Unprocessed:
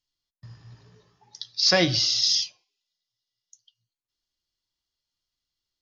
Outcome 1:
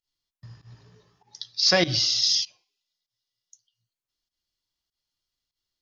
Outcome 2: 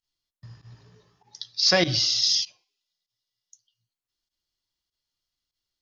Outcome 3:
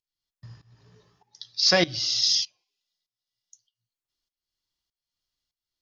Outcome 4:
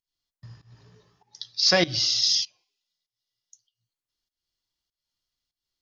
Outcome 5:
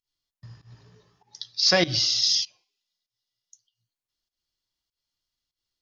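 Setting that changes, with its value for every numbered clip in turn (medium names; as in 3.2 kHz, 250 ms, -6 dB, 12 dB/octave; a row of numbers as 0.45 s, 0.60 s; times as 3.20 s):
volume shaper, release: 107 ms, 67 ms, 521 ms, 272 ms, 160 ms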